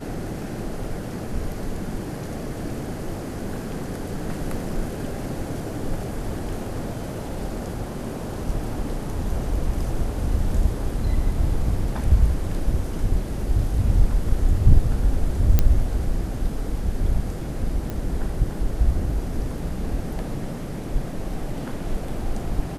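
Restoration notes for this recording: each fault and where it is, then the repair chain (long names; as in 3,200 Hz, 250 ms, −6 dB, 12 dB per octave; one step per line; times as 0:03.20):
0:15.59: click −5 dBFS
0:17.90: click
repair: click removal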